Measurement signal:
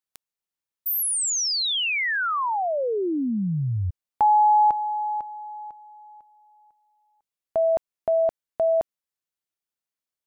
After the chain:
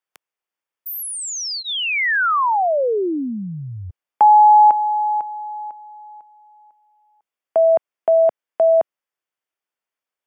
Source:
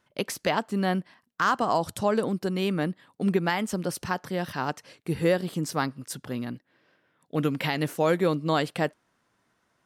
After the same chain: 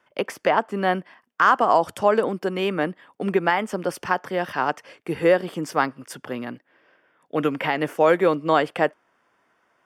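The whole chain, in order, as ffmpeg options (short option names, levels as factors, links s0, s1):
-filter_complex "[0:a]bass=f=250:g=-14,treble=f=4000:g=-11,bandreject=f=4000:w=5.1,acrossover=split=140|1300|1800[s0][s1][s2][s3];[s3]alimiter=level_in=1.78:limit=0.0631:level=0:latency=1:release=410,volume=0.562[s4];[s0][s1][s2][s4]amix=inputs=4:normalize=0,volume=2.37"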